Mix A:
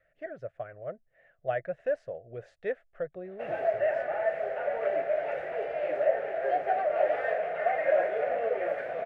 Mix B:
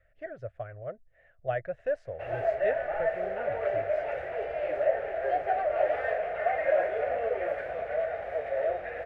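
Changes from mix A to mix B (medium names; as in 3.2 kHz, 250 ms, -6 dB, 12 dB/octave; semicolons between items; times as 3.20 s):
background: entry -1.20 s; master: add resonant low shelf 120 Hz +11.5 dB, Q 1.5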